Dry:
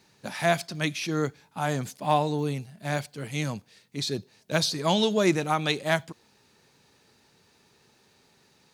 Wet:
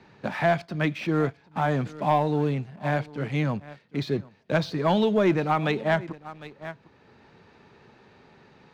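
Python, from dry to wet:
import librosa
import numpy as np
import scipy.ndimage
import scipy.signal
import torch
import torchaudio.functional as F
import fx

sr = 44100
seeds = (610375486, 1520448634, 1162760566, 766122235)

p1 = scipy.signal.sosfilt(scipy.signal.butter(2, 2100.0, 'lowpass', fs=sr, output='sos'), x)
p2 = p1 + fx.echo_single(p1, sr, ms=754, db=-20.5, dry=0)
p3 = fx.leveller(p2, sr, passes=1)
y = fx.band_squash(p3, sr, depth_pct=40)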